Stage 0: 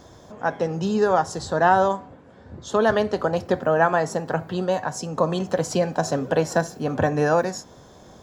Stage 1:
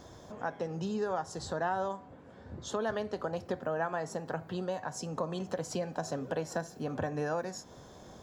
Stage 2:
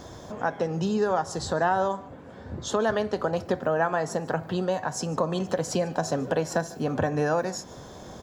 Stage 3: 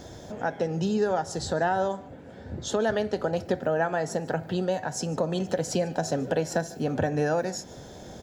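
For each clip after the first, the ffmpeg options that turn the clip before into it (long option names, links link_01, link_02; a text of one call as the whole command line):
ffmpeg -i in.wav -af "acompressor=threshold=-34dB:ratio=2,volume=-4dB" out.wav
ffmpeg -i in.wav -af "aecho=1:1:148:0.0794,volume=8.5dB" out.wav
ffmpeg -i in.wav -af "equalizer=frequency=1100:width=4.5:gain=-13" out.wav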